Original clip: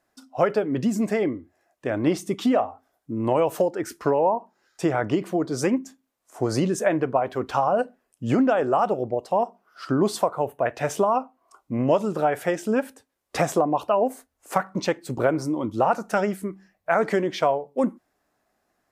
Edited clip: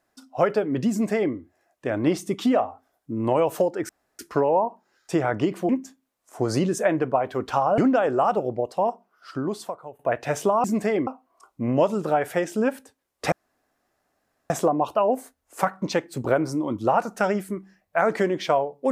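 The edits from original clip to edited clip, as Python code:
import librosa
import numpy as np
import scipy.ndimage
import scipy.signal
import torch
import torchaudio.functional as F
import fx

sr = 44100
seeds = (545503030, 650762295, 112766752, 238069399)

y = fx.edit(x, sr, fx.duplicate(start_s=0.91, length_s=0.43, to_s=11.18),
    fx.insert_room_tone(at_s=3.89, length_s=0.3),
    fx.cut(start_s=5.39, length_s=0.31),
    fx.cut(start_s=7.79, length_s=0.53),
    fx.fade_out_to(start_s=9.24, length_s=1.29, floor_db=-19.0),
    fx.insert_room_tone(at_s=13.43, length_s=1.18), tone=tone)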